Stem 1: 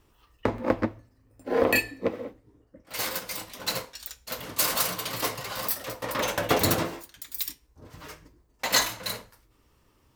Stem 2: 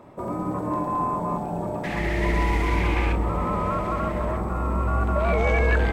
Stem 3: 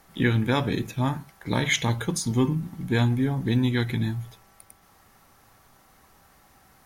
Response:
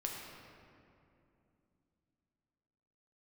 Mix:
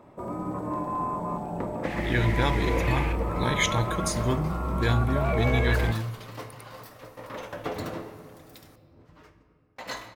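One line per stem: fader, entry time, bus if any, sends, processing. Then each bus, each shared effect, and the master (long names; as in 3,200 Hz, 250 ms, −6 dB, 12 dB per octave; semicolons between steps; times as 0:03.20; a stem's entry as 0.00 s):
−12.0 dB, 1.15 s, send −4 dB, low-pass filter 1,700 Hz 6 dB per octave; noise gate with hold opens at −55 dBFS
−4.5 dB, 0.00 s, no send, no processing
−2.5 dB, 1.90 s, send −16.5 dB, parametric band 240 Hz −6.5 dB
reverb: on, RT60 2.7 s, pre-delay 7 ms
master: no processing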